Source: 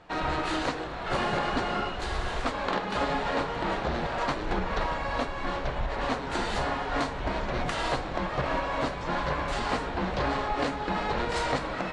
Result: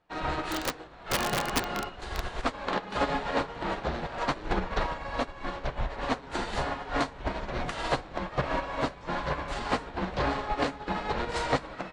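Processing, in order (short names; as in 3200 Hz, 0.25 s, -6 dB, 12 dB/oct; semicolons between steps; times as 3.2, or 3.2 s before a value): 0.5–2.28 wrapped overs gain 19.5 dB; upward expander 2.5:1, over -39 dBFS; gain +4 dB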